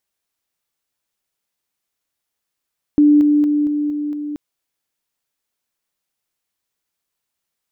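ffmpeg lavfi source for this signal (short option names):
-f lavfi -i "aevalsrc='pow(10,(-7.5-3*floor(t/0.23))/20)*sin(2*PI*295*t)':d=1.38:s=44100"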